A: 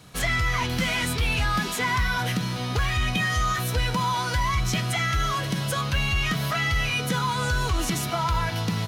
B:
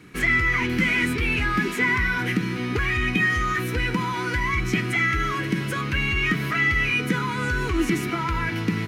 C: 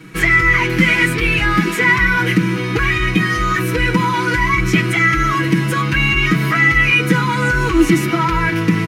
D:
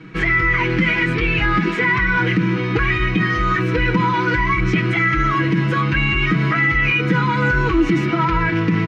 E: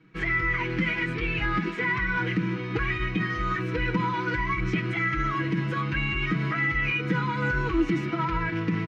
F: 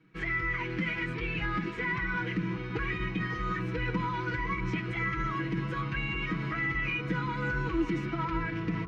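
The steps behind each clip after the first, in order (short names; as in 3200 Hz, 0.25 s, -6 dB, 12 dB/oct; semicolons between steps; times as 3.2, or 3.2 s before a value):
EQ curve 130 Hz 0 dB, 360 Hz +14 dB, 610 Hz -8 dB, 2200 Hz +10 dB, 3500 Hz -5 dB; gain -2 dB
comb 6.2 ms, depth 91%; gain +6 dB
limiter -7 dBFS, peak gain reduction 5.5 dB; air absorption 190 m
upward expander 1.5:1, over -35 dBFS; gain -7 dB
analogue delay 0.564 s, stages 4096, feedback 80%, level -11.5 dB; gain -5.5 dB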